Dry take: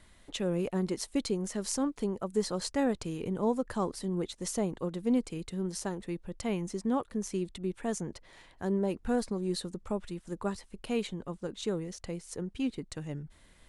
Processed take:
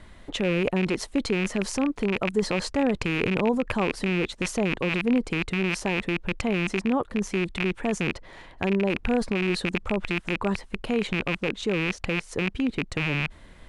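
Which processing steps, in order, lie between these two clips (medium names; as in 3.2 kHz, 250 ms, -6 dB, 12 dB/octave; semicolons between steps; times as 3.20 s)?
rattle on loud lows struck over -44 dBFS, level -22 dBFS; in parallel at -2 dB: compressor with a negative ratio -35 dBFS, ratio -0.5; on the sum: low-pass 2.1 kHz 6 dB/octave; trim +4.5 dB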